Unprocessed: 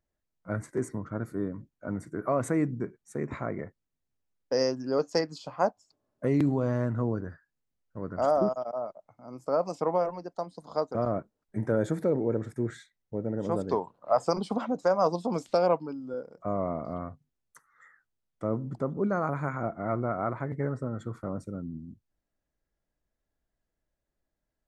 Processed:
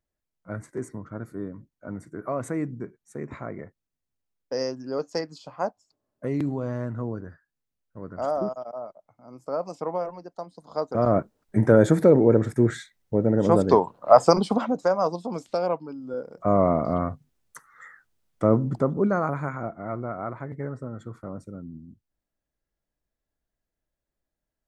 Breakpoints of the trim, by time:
10.67 s -2 dB
11.19 s +10.5 dB
14.24 s +10.5 dB
15.21 s -1.5 dB
15.85 s -1.5 dB
16.55 s +10.5 dB
18.53 s +10.5 dB
19.82 s -2 dB

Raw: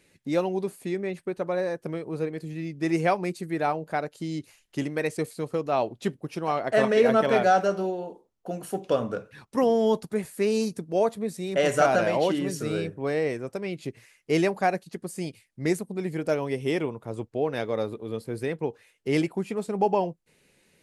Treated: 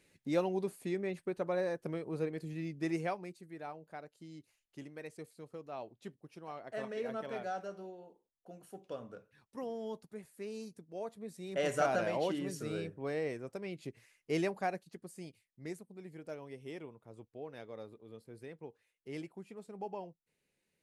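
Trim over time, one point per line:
2.74 s -6.5 dB
3.39 s -19 dB
10.98 s -19 dB
11.63 s -10 dB
14.46 s -10 dB
15.85 s -19 dB

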